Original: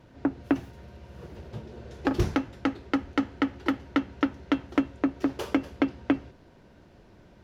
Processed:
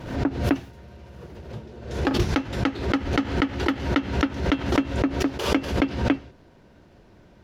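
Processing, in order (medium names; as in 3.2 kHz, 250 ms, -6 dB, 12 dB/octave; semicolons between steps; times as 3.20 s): dynamic bell 3.5 kHz, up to +5 dB, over -47 dBFS, Q 0.73; swell ahead of each attack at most 78 dB/s; trim +1.5 dB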